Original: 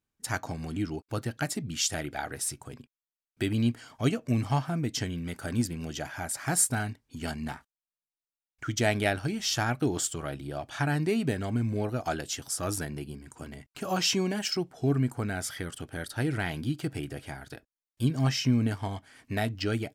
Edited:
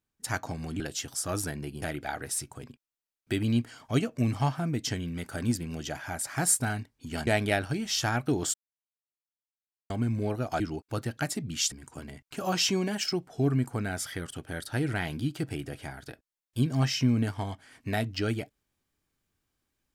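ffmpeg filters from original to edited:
ffmpeg -i in.wav -filter_complex "[0:a]asplit=8[link_01][link_02][link_03][link_04][link_05][link_06][link_07][link_08];[link_01]atrim=end=0.802[link_09];[link_02]atrim=start=12.138:end=13.162[link_10];[link_03]atrim=start=1.918:end=7.372[link_11];[link_04]atrim=start=8.808:end=10.08,asetpts=PTS-STARTPTS,afade=type=out:start_time=1.268:duration=0.004:curve=hsin[link_12];[link_05]atrim=start=10.08:end=11.44,asetpts=PTS-STARTPTS,volume=0[link_13];[link_06]atrim=start=11.44:end=12.142,asetpts=PTS-STARTPTS,afade=type=in:duration=0.004:curve=hsin[link_14];[link_07]atrim=start=0.798:end=1.922[link_15];[link_08]atrim=start=13.158[link_16];[link_09][link_10]acrossfade=duration=0.004:curve1=hsin:curve2=hsin[link_17];[link_17][link_11]acrossfade=duration=0.004:curve1=hsin:curve2=hsin[link_18];[link_12][link_13][link_14]concat=n=3:v=0:a=1[link_19];[link_18][link_19]acrossfade=duration=0.004:curve1=hsin:curve2=hsin[link_20];[link_20][link_15]acrossfade=duration=0.004:curve1=hsin:curve2=hsin[link_21];[link_21][link_16]acrossfade=duration=0.004:curve1=hsin:curve2=hsin" out.wav

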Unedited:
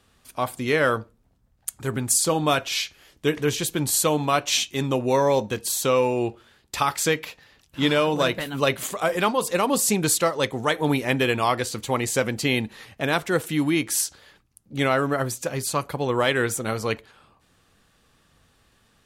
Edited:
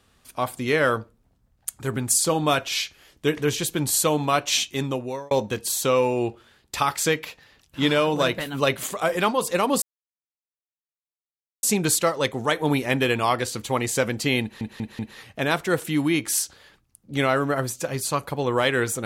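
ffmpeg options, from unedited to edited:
ffmpeg -i in.wav -filter_complex "[0:a]asplit=6[link_01][link_02][link_03][link_04][link_05][link_06];[link_01]atrim=end=5.31,asetpts=PTS-STARTPTS,afade=type=out:start_time=4.75:duration=0.56[link_07];[link_02]atrim=start=5.31:end=9.82,asetpts=PTS-STARTPTS,afade=type=in:duration=0.004:curve=hsin,afade=type=out:start_time=4.506:duration=0.004:curve=hsin,apad=pad_dur=1.81[link_08];[link_03]atrim=start=9.82:end=12.802,asetpts=PTS-STARTPTS,afade=type=in:duration=0.004:curve=hsin[link_09];[link_04]atrim=start=12.608:end=12.802[link_10];[link_05]atrim=start=12.608:end=12.802[link_11];[link_06]atrim=start=12.608[link_12];[link_07][link_08][link_09]concat=n=3:v=0:a=1[link_13];[link_13][link_10]acrossfade=duration=0.004:curve1=hsin:curve2=hsin[link_14];[link_14][link_11]acrossfade=duration=0.004:curve1=hsin:curve2=hsin[link_15];[link_15][link_12]acrossfade=duration=0.004:curve1=hsin:curve2=hsin" out.wav

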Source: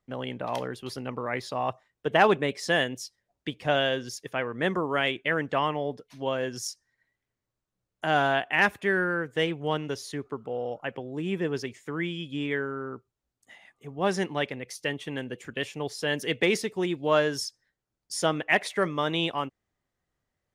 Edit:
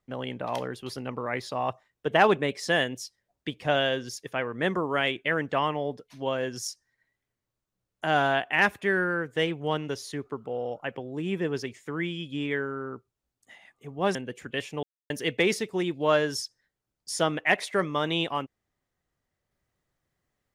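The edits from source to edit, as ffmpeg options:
ffmpeg -i in.wav -filter_complex "[0:a]asplit=4[link_01][link_02][link_03][link_04];[link_01]atrim=end=14.152[link_05];[link_02]atrim=start=15.178:end=15.86,asetpts=PTS-STARTPTS,afade=type=out:start_time=0.678:duration=0.004:curve=hsin[link_06];[link_03]atrim=start=15.86:end=16.13,asetpts=PTS-STARTPTS,volume=0[link_07];[link_04]atrim=start=16.13,asetpts=PTS-STARTPTS,afade=type=in:duration=0.004:curve=hsin[link_08];[link_06][link_07][link_08]concat=n=3:v=0:a=1[link_09];[link_05][link_09]acrossfade=duration=0.004:curve1=hsin:curve2=hsin" out.wav

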